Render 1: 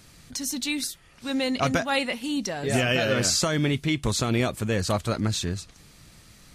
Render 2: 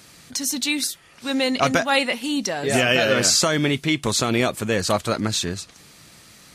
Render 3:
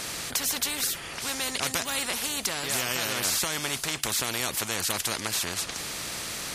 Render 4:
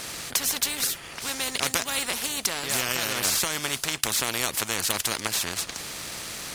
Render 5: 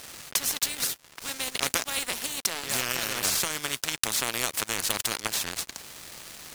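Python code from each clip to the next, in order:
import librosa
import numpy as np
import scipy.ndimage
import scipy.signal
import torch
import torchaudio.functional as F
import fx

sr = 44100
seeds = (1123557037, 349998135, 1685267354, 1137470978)

y1 = fx.highpass(x, sr, hz=250.0, slope=6)
y1 = y1 * librosa.db_to_amplitude(6.0)
y2 = fx.spectral_comp(y1, sr, ratio=4.0)
y2 = y2 * librosa.db_to_amplitude(-6.5)
y3 = fx.power_curve(y2, sr, exponent=1.4)
y3 = y3 * librosa.db_to_amplitude(7.0)
y4 = np.sign(y3) * np.maximum(np.abs(y3) - 10.0 ** (-34.5 / 20.0), 0.0)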